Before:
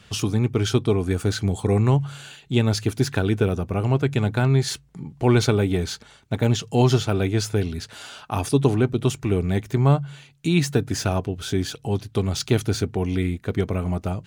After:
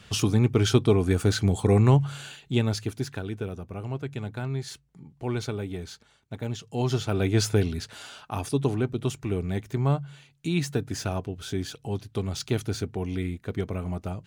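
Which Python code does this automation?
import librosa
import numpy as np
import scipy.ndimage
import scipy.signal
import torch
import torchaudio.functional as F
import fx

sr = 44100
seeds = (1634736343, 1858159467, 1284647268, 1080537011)

y = fx.gain(x, sr, db=fx.line((2.24, 0.0), (3.25, -12.0), (6.65, -12.0), (7.44, 1.0), (8.42, -6.5)))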